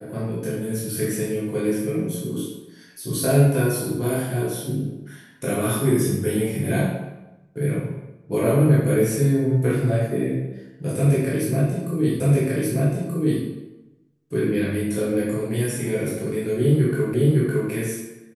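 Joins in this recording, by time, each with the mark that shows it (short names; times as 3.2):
12.2 repeat of the last 1.23 s
17.14 repeat of the last 0.56 s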